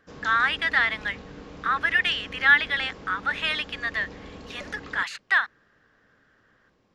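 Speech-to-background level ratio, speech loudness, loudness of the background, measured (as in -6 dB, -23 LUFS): 19.0 dB, -24.0 LUFS, -43.0 LUFS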